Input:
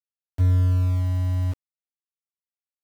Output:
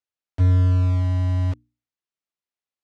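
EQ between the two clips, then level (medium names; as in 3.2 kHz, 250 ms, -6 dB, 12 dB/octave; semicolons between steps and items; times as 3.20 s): distance through air 80 m; bass shelf 72 Hz -7 dB; hum notches 60/120/180/240/300 Hz; +5.0 dB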